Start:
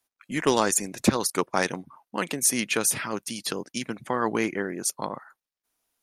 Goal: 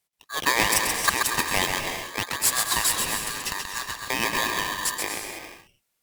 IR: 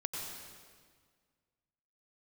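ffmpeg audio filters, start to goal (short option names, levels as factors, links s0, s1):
-filter_complex "[0:a]equalizer=f=130:t=o:w=1.9:g=-5.5,asplit=2[s0][s1];[1:a]atrim=start_sample=2205,afade=t=out:st=0.41:d=0.01,atrim=end_sample=18522,adelay=131[s2];[s1][s2]afir=irnorm=-1:irlink=0,volume=0.668[s3];[s0][s3]amix=inputs=2:normalize=0,aeval=exprs='val(0)*sgn(sin(2*PI*1400*n/s))':c=same"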